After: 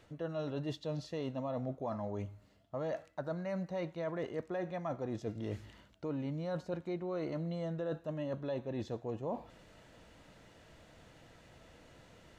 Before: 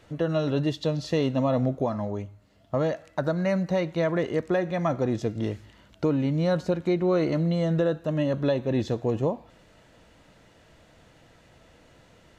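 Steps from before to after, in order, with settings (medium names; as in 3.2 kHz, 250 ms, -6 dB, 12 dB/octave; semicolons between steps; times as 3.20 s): dynamic bell 810 Hz, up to +5 dB, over -36 dBFS, Q 1; reverse; compression 6:1, threshold -33 dBFS, peak gain reduction 15 dB; reverse; trim -3 dB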